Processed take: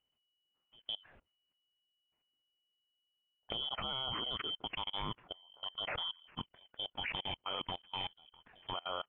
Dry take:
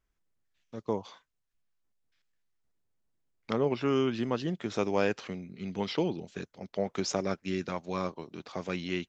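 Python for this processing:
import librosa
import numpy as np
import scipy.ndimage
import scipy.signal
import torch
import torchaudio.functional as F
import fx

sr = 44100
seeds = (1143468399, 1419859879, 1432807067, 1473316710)

y = fx.band_shuffle(x, sr, order='2413')
y = scipy.signal.sosfilt(scipy.signal.butter(16, 2900.0, 'lowpass', fs=sr, output='sos'), y)
y = fx.level_steps(y, sr, step_db=23)
y = y * 10.0 ** (7.5 / 20.0)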